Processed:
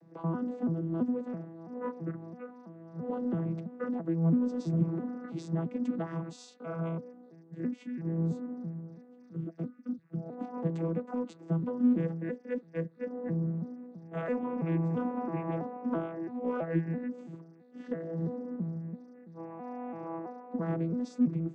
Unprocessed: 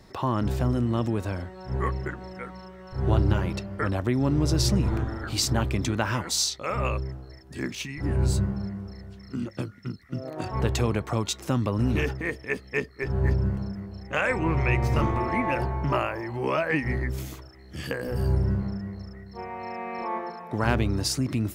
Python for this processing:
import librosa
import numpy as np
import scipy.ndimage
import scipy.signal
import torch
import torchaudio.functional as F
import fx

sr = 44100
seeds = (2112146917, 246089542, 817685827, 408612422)

p1 = fx.vocoder_arp(x, sr, chord='bare fifth', root=52, every_ms=332)
p2 = scipy.signal.sosfilt(scipy.signal.butter(2, 140.0, 'highpass', fs=sr, output='sos'), p1)
p3 = fx.peak_eq(p2, sr, hz=4500.0, db=-14.5, octaves=2.9)
p4 = 10.0 ** (-29.0 / 20.0) * np.tanh(p3 / 10.0 ** (-29.0 / 20.0))
p5 = p3 + (p4 * 10.0 ** (-11.5 / 20.0))
y = p5 * 10.0 ** (-4.5 / 20.0)